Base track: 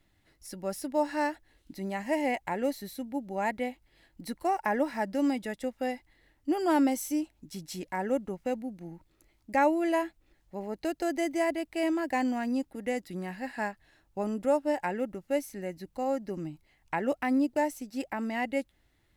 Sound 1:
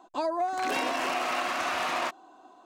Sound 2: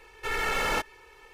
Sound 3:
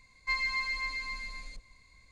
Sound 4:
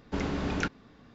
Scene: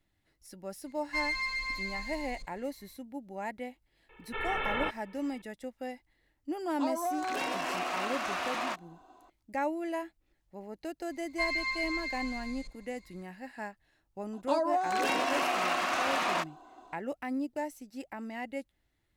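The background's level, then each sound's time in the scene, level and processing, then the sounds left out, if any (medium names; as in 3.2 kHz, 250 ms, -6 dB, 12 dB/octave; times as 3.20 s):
base track -7.5 dB
0.86 s: add 3 -4 dB + waveshaping leveller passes 1
4.09 s: add 2 -5 dB + resampled via 8 kHz
6.65 s: add 1 -4.5 dB
11.11 s: add 3 -1 dB
14.33 s: add 1 -0.5 dB
not used: 4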